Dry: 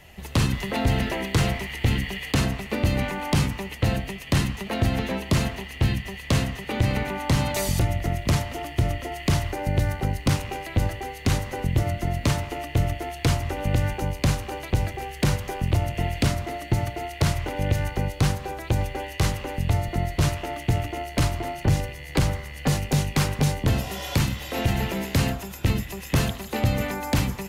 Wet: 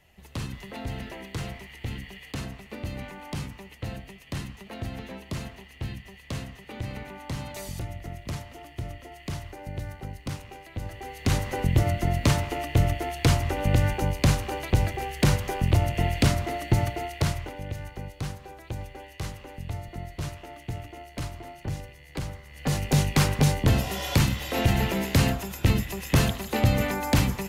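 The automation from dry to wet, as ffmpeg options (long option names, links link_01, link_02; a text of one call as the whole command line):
ffmpeg -i in.wav -af "volume=13.5dB,afade=type=in:start_time=10.83:duration=0.7:silence=0.223872,afade=type=out:start_time=16.84:duration=0.79:silence=0.237137,afade=type=in:start_time=22.46:duration=0.53:silence=0.237137" out.wav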